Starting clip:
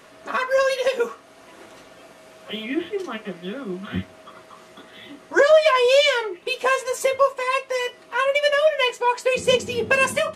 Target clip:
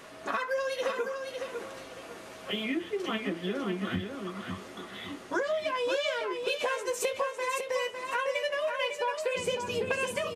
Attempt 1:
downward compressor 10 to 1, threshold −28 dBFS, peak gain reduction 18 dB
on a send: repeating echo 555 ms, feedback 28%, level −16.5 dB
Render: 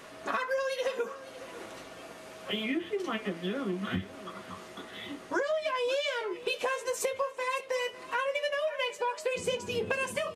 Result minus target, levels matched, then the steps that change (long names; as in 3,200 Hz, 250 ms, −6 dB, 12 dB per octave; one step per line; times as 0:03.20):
echo-to-direct −10.5 dB
change: repeating echo 555 ms, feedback 28%, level −6 dB